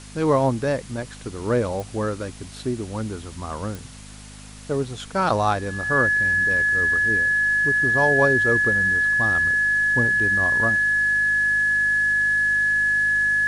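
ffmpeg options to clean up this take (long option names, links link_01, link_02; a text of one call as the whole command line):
ffmpeg -i in.wav -af "adeclick=threshold=4,bandreject=frequency=51.4:width_type=h:width=4,bandreject=frequency=102.8:width_type=h:width=4,bandreject=frequency=154.2:width_type=h:width=4,bandreject=frequency=205.6:width_type=h:width=4,bandreject=frequency=257:width_type=h:width=4,bandreject=frequency=1700:width=30,afftdn=noise_reduction=28:noise_floor=-40" out.wav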